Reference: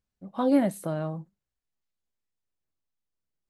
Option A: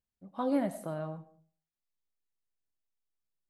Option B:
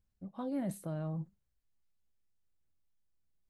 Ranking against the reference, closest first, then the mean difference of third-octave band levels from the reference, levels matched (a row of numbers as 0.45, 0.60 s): A, B; 2.0, 3.0 dB